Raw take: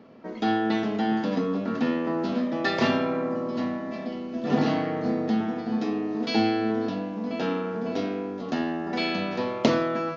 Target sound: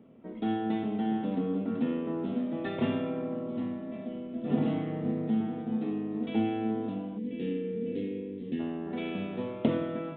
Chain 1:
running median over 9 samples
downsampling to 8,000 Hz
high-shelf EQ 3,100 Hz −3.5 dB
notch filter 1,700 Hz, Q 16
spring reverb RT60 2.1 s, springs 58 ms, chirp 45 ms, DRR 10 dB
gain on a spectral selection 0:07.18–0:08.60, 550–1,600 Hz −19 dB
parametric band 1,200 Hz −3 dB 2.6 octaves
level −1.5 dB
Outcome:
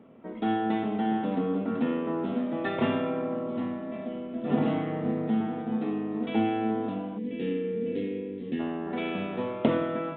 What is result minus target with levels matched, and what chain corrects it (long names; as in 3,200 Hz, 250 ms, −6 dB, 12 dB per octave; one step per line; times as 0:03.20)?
1,000 Hz band +4.5 dB
running median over 9 samples
downsampling to 8,000 Hz
high-shelf EQ 3,100 Hz −3.5 dB
notch filter 1,700 Hz, Q 16
spring reverb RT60 2.1 s, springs 58 ms, chirp 45 ms, DRR 10 dB
gain on a spectral selection 0:07.18–0:08.60, 550–1,600 Hz −19 dB
parametric band 1,200 Hz −11.5 dB 2.6 octaves
level −1.5 dB